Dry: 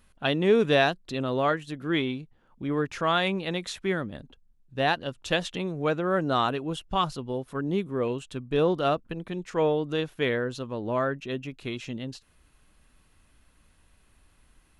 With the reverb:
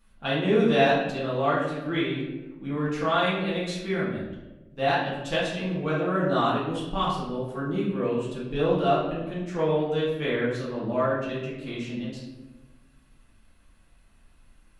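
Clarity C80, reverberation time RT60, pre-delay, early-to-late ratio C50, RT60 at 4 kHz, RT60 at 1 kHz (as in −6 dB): 5.0 dB, 1.1 s, 4 ms, 2.0 dB, 0.70 s, 0.90 s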